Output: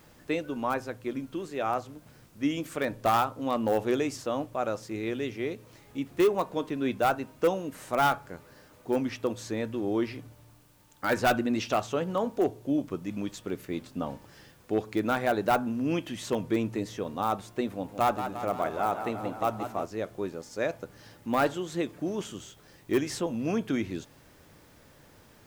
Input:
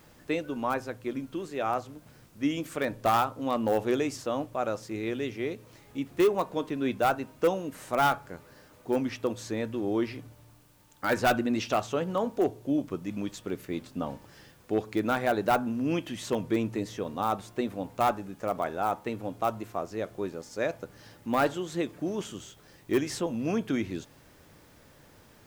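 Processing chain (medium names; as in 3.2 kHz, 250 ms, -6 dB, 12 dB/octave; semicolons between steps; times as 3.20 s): 17.71–19.86 s: modulated delay 174 ms, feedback 65%, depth 84 cents, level -9 dB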